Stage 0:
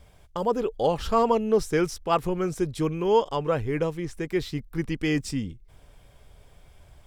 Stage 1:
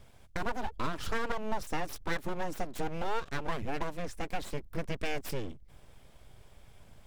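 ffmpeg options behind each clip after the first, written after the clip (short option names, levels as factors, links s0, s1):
-af "acompressor=threshold=0.0501:ratio=4,aeval=exprs='abs(val(0))':c=same,volume=0.841"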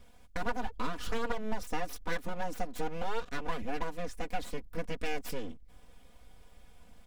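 -af "aecho=1:1:4.1:0.71,volume=0.708"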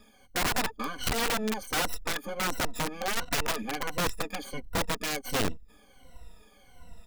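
-af "afftfilt=real='re*pow(10,21/40*sin(2*PI*(2*log(max(b,1)*sr/1024/100)/log(2)-(-1.4)*(pts-256)/sr)))':imag='im*pow(10,21/40*sin(2*PI*(2*log(max(b,1)*sr/1024/100)/log(2)-(-1.4)*(pts-256)/sr)))':win_size=1024:overlap=0.75,aeval=exprs='(mod(14.1*val(0)+1,2)-1)/14.1':c=same"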